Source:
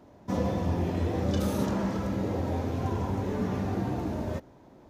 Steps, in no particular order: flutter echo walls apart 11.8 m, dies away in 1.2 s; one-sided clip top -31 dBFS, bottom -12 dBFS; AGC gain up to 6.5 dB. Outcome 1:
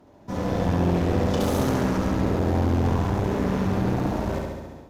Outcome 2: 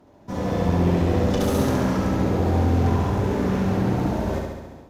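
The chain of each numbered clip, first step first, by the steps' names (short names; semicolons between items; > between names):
flutter echo > AGC > one-sided clip; one-sided clip > flutter echo > AGC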